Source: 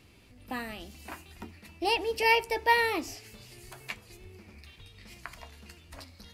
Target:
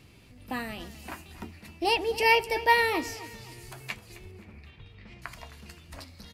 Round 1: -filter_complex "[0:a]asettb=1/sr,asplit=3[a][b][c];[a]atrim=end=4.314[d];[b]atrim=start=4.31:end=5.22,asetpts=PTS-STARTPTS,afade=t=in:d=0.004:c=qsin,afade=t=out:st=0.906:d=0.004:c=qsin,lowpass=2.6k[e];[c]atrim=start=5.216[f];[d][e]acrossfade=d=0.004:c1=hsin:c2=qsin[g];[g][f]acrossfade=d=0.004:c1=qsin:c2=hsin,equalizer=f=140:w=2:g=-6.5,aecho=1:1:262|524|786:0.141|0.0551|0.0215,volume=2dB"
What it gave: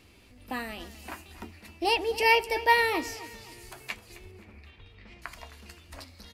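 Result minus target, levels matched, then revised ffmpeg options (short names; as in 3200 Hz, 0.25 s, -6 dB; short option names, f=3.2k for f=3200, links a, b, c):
125 Hz band -4.0 dB
-filter_complex "[0:a]asettb=1/sr,asplit=3[a][b][c];[a]atrim=end=4.314[d];[b]atrim=start=4.31:end=5.22,asetpts=PTS-STARTPTS,afade=t=in:d=0.004:c=qsin,afade=t=out:st=0.906:d=0.004:c=qsin,lowpass=2.6k[e];[c]atrim=start=5.216[f];[d][e]acrossfade=d=0.004:c1=hsin:c2=qsin[g];[g][f]acrossfade=d=0.004:c1=qsin:c2=hsin,equalizer=f=140:w=2:g=5.5,aecho=1:1:262|524|786:0.141|0.0551|0.0215,volume=2dB"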